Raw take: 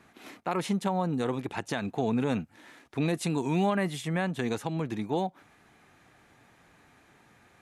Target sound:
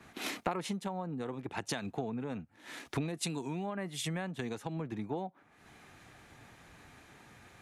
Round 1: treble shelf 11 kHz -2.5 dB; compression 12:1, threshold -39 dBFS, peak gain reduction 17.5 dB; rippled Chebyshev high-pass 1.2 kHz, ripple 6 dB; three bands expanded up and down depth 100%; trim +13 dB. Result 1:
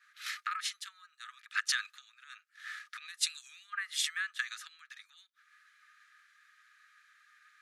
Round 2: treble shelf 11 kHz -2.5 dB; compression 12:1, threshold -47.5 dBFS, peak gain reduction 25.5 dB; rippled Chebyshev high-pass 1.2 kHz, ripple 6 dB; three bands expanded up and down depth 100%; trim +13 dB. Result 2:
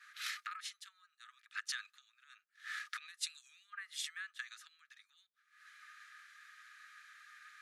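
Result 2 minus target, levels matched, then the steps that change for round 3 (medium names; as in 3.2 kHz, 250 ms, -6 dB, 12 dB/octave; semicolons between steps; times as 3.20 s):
1 kHz band -4.5 dB
remove: rippled Chebyshev high-pass 1.2 kHz, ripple 6 dB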